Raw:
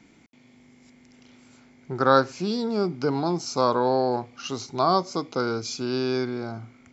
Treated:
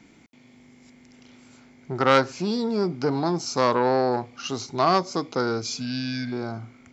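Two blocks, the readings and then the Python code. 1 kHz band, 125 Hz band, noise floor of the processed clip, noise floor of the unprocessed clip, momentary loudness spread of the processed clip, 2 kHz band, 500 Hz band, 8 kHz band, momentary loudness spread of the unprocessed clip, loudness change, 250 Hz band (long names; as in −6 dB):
+0.5 dB, +1.0 dB, −54 dBFS, −56 dBFS, 12 LU, +2.5 dB, 0.0 dB, can't be measured, 13 LU, +0.5 dB, +0.5 dB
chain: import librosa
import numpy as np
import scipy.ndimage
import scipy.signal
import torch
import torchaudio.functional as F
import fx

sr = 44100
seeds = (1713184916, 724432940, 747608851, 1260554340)

y = fx.spec_repair(x, sr, seeds[0], start_s=5.77, length_s=0.53, low_hz=270.0, high_hz=1500.0, source='before')
y = fx.transformer_sat(y, sr, knee_hz=1400.0)
y = F.gain(torch.from_numpy(y), 2.0).numpy()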